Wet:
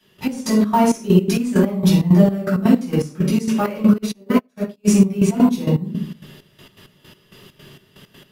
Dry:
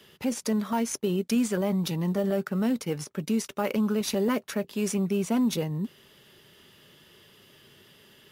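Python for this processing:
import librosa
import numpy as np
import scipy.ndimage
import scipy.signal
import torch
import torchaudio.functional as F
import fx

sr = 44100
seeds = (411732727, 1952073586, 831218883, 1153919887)

y = fx.room_shoebox(x, sr, seeds[0], volume_m3=670.0, walls='furnished', distance_m=8.5)
y = fx.step_gate(y, sr, bpm=164, pattern='..x..xx.xx..x.x', floor_db=-12.0, edge_ms=4.5)
y = fx.upward_expand(y, sr, threshold_db=-30.0, expansion=2.5, at=(3.98, 4.88))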